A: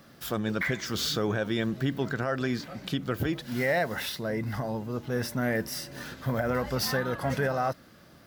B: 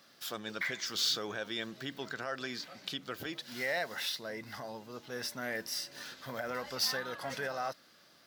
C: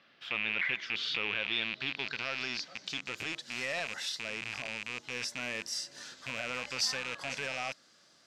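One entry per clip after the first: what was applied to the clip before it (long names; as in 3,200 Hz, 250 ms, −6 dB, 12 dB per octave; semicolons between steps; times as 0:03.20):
high-pass filter 590 Hz 6 dB per octave; parametric band 4,500 Hz +7.5 dB 1.5 octaves; level −6.5 dB
loose part that buzzes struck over −53 dBFS, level −23 dBFS; low-pass filter sweep 2,700 Hz → 7,500 Hz, 0:01.01–0:03.22; level −3 dB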